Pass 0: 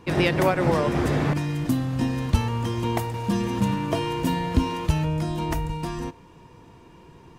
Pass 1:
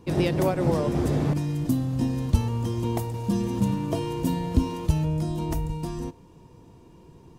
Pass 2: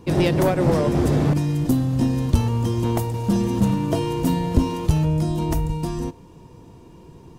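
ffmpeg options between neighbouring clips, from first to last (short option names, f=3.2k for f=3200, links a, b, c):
-af "equalizer=f=1.8k:w=0.6:g=-11"
-af "aeval=exprs='clip(val(0),-1,0.106)':c=same,volume=5.5dB"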